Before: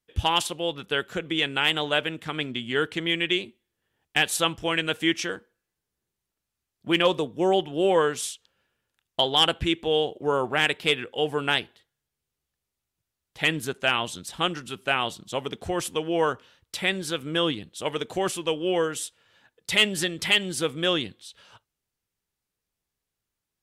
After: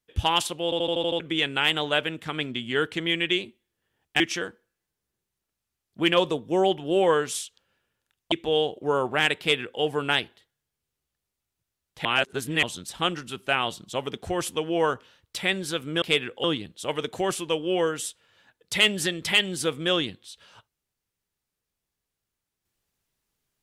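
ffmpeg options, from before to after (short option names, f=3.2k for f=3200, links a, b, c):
-filter_complex "[0:a]asplit=14[a][b][c][d][e][f][g][h][i][j][k][l][m][n];[a]atrim=end=0.722[o];[b]atrim=start=0.638:end=0.722[p];[c]atrim=start=0.638:end=0.722[q];[d]atrim=start=0.638:end=0.722[r];[e]atrim=start=0.638:end=0.722[s];[f]atrim=start=0.638:end=0.722[t];[g]atrim=start=0.638:end=0.722[u];[h]atrim=start=1.198:end=4.202[v];[i]atrim=start=5.078:end=9.202[w];[j]atrim=start=9.708:end=13.442[x];[k]atrim=start=13.438:end=14.022,asetpts=PTS-STARTPTS,areverse[y];[l]atrim=start=14.018:end=17.412[z];[m]atrim=start=10.778:end=11.202[aa];[n]atrim=start=17.408[ab];[o][p]acrossfade=d=0.004:c1=hsin:c2=hsin[ac];[ac][q]acrossfade=d=0.004:c1=hsin:c2=hsin[ad];[ad][r]acrossfade=d=0.004:c1=hsin:c2=hsin[ae];[ae][s]acrossfade=d=0.004:c1=hsin:c2=hsin[af];[af][t]acrossfade=d=0.004:c1=hsin:c2=hsin[ag];[ag][u]acrossfade=d=0.004:c1=hsin:c2=hsin[ah];[ah][v]acrossfade=d=0.004:c1=hsin:c2=hsin[ai];[ai][w]acrossfade=d=0.004:c1=hsin:c2=hsin[aj];[aj][x]acrossfade=d=0.004:c1=hsin:c2=hsin[ak];[ak][y]acrossfade=d=0.004:c1=hsin:c2=hsin[al];[al][z]acrossfade=d=0.004:c1=hsin:c2=hsin[am];[am][aa]acrossfade=d=0.004:c1=hsin:c2=hsin[an];[an][ab]acrossfade=d=0.004:c1=hsin:c2=hsin"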